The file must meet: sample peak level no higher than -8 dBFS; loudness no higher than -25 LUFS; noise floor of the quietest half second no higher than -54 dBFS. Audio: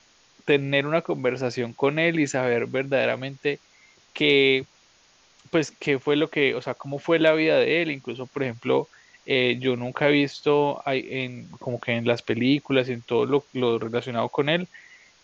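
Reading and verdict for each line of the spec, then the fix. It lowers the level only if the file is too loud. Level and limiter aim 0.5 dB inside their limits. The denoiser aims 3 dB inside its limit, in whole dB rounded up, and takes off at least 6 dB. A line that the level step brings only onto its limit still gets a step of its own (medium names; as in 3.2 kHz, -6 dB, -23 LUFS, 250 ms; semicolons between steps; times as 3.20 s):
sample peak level -5.5 dBFS: fail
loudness -23.5 LUFS: fail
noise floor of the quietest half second -59 dBFS: pass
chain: trim -2 dB; peak limiter -8.5 dBFS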